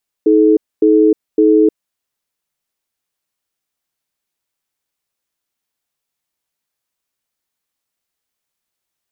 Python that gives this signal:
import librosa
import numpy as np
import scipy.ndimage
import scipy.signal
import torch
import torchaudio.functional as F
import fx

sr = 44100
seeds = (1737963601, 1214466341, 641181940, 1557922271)

y = fx.cadence(sr, length_s=1.5, low_hz=317.0, high_hz=430.0, on_s=0.31, off_s=0.25, level_db=-9.5)